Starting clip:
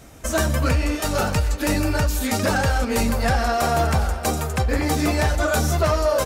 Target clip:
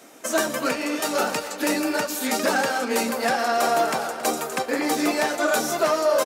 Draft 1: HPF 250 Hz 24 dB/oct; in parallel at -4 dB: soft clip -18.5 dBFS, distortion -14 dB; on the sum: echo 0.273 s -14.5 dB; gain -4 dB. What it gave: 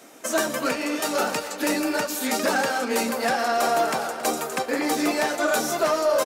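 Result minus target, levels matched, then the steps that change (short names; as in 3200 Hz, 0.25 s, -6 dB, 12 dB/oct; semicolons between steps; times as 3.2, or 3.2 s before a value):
soft clip: distortion +14 dB
change: soft clip -9 dBFS, distortion -28 dB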